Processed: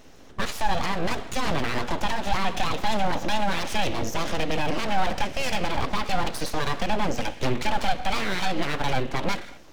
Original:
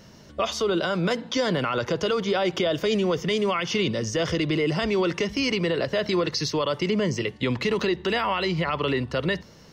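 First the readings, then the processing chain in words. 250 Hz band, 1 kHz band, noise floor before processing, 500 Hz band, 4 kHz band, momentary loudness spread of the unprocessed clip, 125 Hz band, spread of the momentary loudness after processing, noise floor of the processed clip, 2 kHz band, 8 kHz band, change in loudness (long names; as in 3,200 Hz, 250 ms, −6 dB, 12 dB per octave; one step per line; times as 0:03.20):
−5.0 dB, +4.5 dB, −49 dBFS, −7.0 dB, −2.5 dB, 3 LU, −3.0 dB, 3 LU, −46 dBFS, 0.0 dB, +0.5 dB, −2.5 dB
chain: thirty-one-band graphic EQ 125 Hz +7 dB, 400 Hz +5 dB, 5,000 Hz −7 dB
reverb whose tail is shaped and stops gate 290 ms falling, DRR 9 dB
full-wave rectification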